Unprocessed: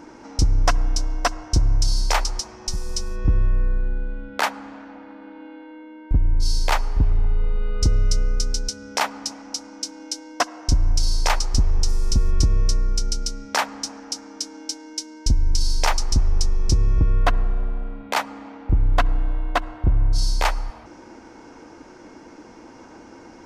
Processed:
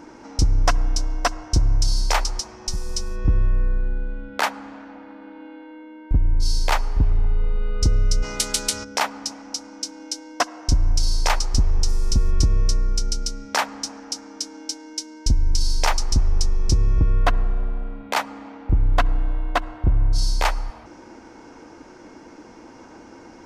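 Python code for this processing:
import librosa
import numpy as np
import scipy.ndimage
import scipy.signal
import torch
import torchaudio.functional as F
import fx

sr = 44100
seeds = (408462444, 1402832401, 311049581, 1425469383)

y = fx.spectral_comp(x, sr, ratio=4.0, at=(8.22, 8.83), fade=0.02)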